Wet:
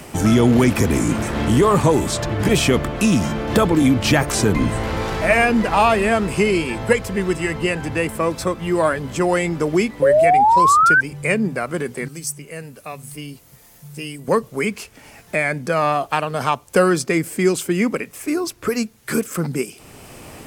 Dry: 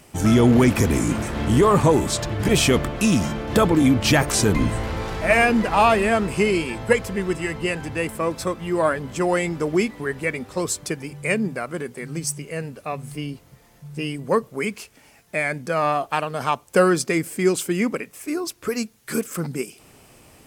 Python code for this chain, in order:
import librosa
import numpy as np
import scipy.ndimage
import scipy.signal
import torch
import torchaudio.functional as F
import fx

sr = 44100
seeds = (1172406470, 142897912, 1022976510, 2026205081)

y = fx.spec_paint(x, sr, seeds[0], shape='rise', start_s=10.02, length_s=0.99, low_hz=520.0, high_hz=1600.0, level_db=-14.0)
y = fx.pre_emphasis(y, sr, coefficient=0.8, at=(12.08, 14.28))
y = fx.band_squash(y, sr, depth_pct=40)
y = F.gain(torch.from_numpy(y), 2.0).numpy()